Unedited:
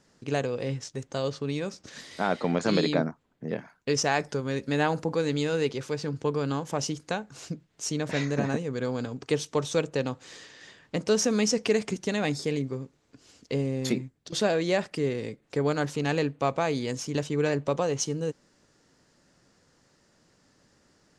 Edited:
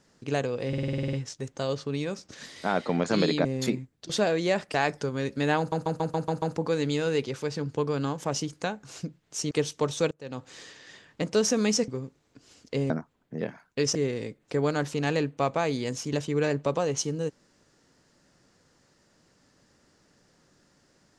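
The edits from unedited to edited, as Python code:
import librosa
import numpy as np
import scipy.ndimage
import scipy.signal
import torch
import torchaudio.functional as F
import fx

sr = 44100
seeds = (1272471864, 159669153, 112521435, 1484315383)

y = fx.edit(x, sr, fx.stutter(start_s=0.68, slice_s=0.05, count=10),
    fx.swap(start_s=3.0, length_s=1.05, other_s=13.68, other_length_s=1.29),
    fx.stutter(start_s=4.89, slice_s=0.14, count=7),
    fx.cut(start_s=7.98, length_s=1.27),
    fx.fade_in_from(start_s=9.85, length_s=0.33, curve='qua', floor_db=-22.5),
    fx.cut(start_s=11.62, length_s=1.04), tone=tone)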